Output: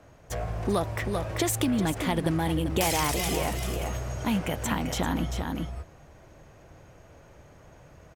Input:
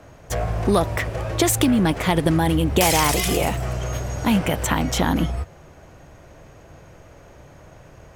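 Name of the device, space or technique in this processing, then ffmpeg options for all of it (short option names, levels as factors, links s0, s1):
ducked delay: -filter_complex "[0:a]asplit=3[s0][s1][s2];[s1]adelay=391,volume=0.708[s3];[s2]apad=whole_len=376682[s4];[s3][s4]sidechaincompress=threshold=0.0794:ratio=8:attack=16:release=431[s5];[s0][s5]amix=inputs=2:normalize=0,volume=0.398"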